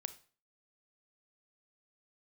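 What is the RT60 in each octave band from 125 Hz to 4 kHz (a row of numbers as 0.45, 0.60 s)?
0.45, 0.45, 0.40, 0.40, 0.40, 0.35 s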